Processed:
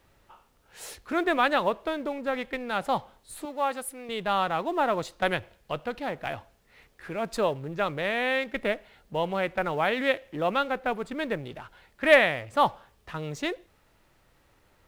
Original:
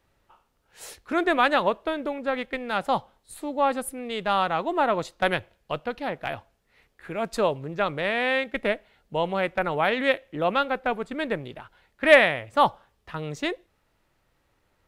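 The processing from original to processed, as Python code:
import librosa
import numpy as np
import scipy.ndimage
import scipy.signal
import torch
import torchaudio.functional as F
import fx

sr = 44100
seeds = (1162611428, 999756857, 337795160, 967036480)

y = fx.law_mismatch(x, sr, coded='mu')
y = fx.low_shelf(y, sr, hz=350.0, db=-12.0, at=(3.45, 4.09))
y = y * librosa.db_to_amplitude(-3.0)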